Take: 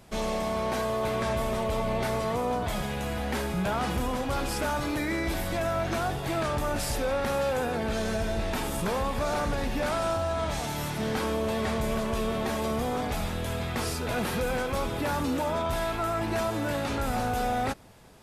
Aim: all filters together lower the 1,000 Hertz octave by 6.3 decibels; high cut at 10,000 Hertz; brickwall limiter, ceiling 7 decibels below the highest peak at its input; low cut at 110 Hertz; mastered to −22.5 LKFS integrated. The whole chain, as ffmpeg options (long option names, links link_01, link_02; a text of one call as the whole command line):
ffmpeg -i in.wav -af "highpass=110,lowpass=10000,equalizer=frequency=1000:width_type=o:gain=-9,volume=13dB,alimiter=limit=-14dB:level=0:latency=1" out.wav